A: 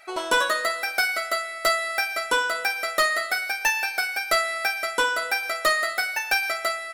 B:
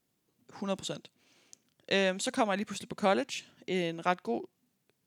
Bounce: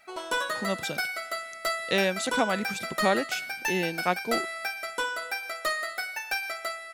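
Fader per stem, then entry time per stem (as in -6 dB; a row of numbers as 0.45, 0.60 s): -7.5, +2.5 dB; 0.00, 0.00 s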